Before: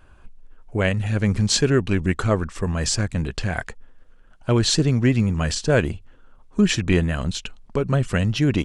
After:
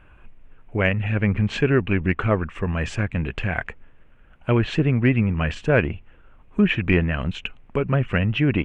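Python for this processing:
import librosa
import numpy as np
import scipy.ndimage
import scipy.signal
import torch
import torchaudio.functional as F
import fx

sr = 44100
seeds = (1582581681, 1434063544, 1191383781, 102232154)

y = fx.dmg_noise_colour(x, sr, seeds[0], colour='brown', level_db=-54.0)
y = fx.high_shelf_res(y, sr, hz=3500.0, db=-10.5, q=3.0)
y = fx.env_lowpass_down(y, sr, base_hz=2700.0, full_db=-15.5)
y = fx.cheby_harmonics(y, sr, harmonics=(2, 3, 4, 6), levels_db=(-29, -32, -30, -41), full_scale_db=-2.5)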